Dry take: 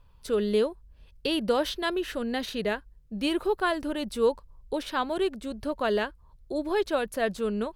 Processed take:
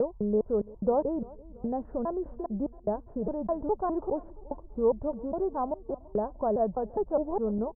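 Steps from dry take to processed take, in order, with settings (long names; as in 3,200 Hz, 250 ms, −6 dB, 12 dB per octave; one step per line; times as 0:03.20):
slices reordered back to front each 205 ms, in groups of 4
Butterworth low-pass 900 Hz 36 dB per octave
dynamic equaliser 340 Hz, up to −7 dB, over −39 dBFS, Q 1.1
repeating echo 337 ms, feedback 51%, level −22 dB
level +3.5 dB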